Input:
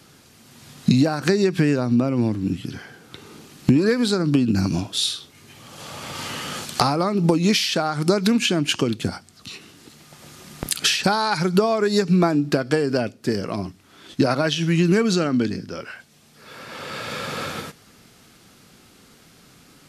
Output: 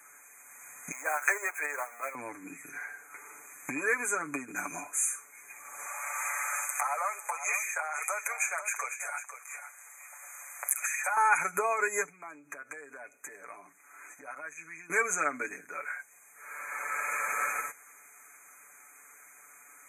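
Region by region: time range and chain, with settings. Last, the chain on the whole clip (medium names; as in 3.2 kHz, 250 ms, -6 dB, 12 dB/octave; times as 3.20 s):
0.91–2.15 s: jump at every zero crossing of -28.5 dBFS + high-pass 460 Hz 24 dB/octave + gate -27 dBFS, range -7 dB
5.86–11.17 s: steep high-pass 530 Hz 48 dB/octave + compression 5:1, threshold -24 dBFS + delay 500 ms -10.5 dB
12.06–14.90 s: compression 5:1, threshold -34 dBFS + loudspeaker Doppler distortion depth 0.13 ms
whole clip: FFT band-reject 2.5–6.1 kHz; high-pass 1.2 kHz 12 dB/octave; comb 6.9 ms, depth 70%; trim +1 dB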